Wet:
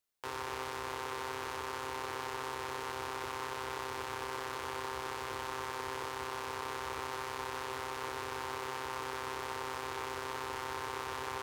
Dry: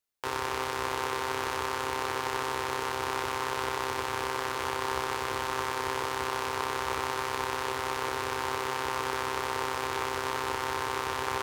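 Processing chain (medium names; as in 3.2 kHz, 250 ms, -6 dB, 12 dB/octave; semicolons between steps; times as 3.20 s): peak limiter -24.5 dBFS, peak gain reduction 11 dB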